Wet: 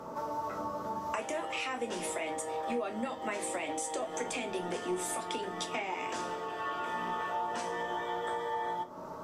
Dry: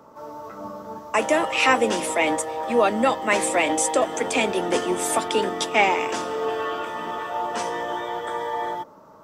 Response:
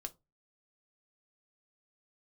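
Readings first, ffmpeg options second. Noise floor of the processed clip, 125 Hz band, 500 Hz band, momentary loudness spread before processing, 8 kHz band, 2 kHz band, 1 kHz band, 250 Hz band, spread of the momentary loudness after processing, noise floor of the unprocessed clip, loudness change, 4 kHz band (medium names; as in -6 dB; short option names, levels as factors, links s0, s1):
-43 dBFS, -8.5 dB, -13.0 dB, 15 LU, -12.0 dB, -14.0 dB, -10.5 dB, -12.0 dB, 3 LU, -48 dBFS, -13.0 dB, -13.0 dB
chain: -filter_complex "[0:a]alimiter=limit=0.158:level=0:latency=1:release=483,acompressor=threshold=0.0126:ratio=10[s0];[1:a]atrim=start_sample=2205,asetrate=25137,aresample=44100[s1];[s0][s1]afir=irnorm=-1:irlink=0,volume=1.88"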